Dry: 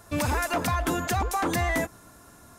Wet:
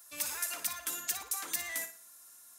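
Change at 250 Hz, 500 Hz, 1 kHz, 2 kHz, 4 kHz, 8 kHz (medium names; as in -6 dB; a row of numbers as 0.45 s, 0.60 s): -27.0 dB, -22.5 dB, -19.0 dB, -11.0 dB, -5.0 dB, +1.0 dB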